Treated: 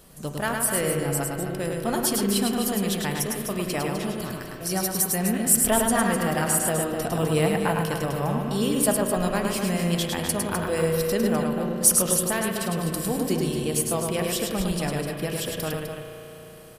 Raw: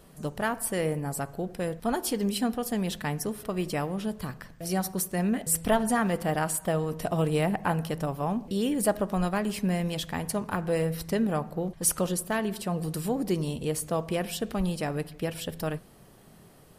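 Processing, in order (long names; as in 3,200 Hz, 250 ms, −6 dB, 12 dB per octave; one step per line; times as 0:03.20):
high-shelf EQ 3,100 Hz +8 dB
on a send: loudspeakers that aren't time-aligned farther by 36 metres −4 dB, 87 metres −8 dB
on the sum: spring reverb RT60 3.8 s, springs 35 ms, chirp 75 ms, DRR 6.5 dB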